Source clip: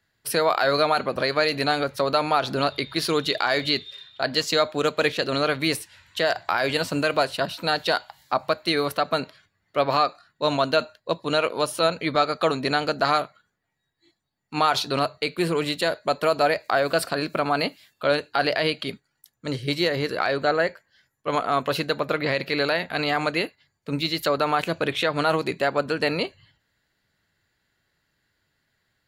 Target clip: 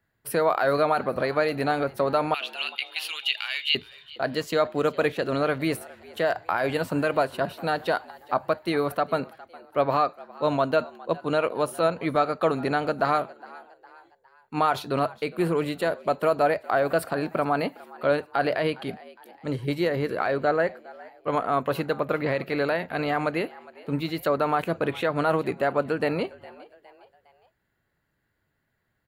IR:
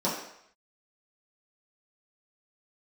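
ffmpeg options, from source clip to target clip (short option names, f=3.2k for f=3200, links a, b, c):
-filter_complex "[0:a]asettb=1/sr,asplit=3[a][b][c];[a]atrim=end=2.344[d];[b]atrim=start=2.34:end=3.75,asetpts=PTS-STARTPTS,afade=t=in:d=0.004:c=qsin,afade=t=out:st=1.406:d=0.004:c=qsin,highpass=f=2.8k:t=q:w=8.3[e];[c]atrim=start=3.746[f];[d][e]acrossfade=d=0.004:c1=hsin:c2=qsin[g];[g][f]acrossfade=d=0.004:c1=qsin:c2=hsin,equalizer=f=5k:w=0.63:g=-14,asplit=4[h][i][j][k];[i]adelay=410,afreqshift=86,volume=-21dB[l];[j]adelay=820,afreqshift=172,volume=-27.9dB[m];[k]adelay=1230,afreqshift=258,volume=-34.9dB[n];[h][l][m][n]amix=inputs=4:normalize=0"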